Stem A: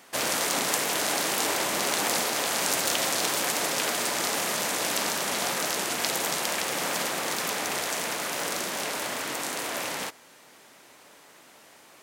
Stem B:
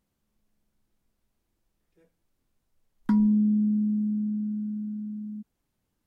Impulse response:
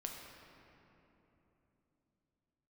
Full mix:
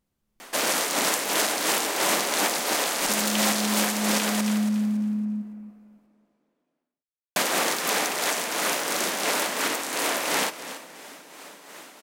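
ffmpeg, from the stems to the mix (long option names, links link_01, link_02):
-filter_complex "[0:a]highpass=frequency=180:width=0.5412,highpass=frequency=180:width=1.3066,acontrast=74,tremolo=f=2.9:d=0.55,adelay=400,volume=2dB,asplit=3[link_01][link_02][link_03];[link_01]atrim=end=4.41,asetpts=PTS-STARTPTS,afade=type=out:start_time=4.406:duration=0.004:curve=hsin[link_04];[link_02]atrim=start=4.41:end=7.36,asetpts=PTS-STARTPTS,volume=0[link_05];[link_03]atrim=start=7.36,asetpts=PTS-STARTPTS,afade=type=in:duration=0.004:curve=hsin[link_06];[link_04][link_05][link_06]concat=n=3:v=0:a=1,asplit=3[link_07][link_08][link_09];[link_08]volume=-11.5dB[link_10];[link_09]volume=-13dB[link_11];[1:a]dynaudnorm=framelen=120:gausssize=11:maxgain=7dB,alimiter=limit=-21.5dB:level=0:latency=1,volume=-0.5dB,asplit=2[link_12][link_13];[link_13]volume=-11.5dB[link_14];[2:a]atrim=start_sample=2205[link_15];[link_10][link_15]afir=irnorm=-1:irlink=0[link_16];[link_11][link_14]amix=inputs=2:normalize=0,aecho=0:1:280|560|840|1120:1|0.25|0.0625|0.0156[link_17];[link_07][link_12][link_16][link_17]amix=inputs=4:normalize=0,alimiter=limit=-11.5dB:level=0:latency=1:release=338"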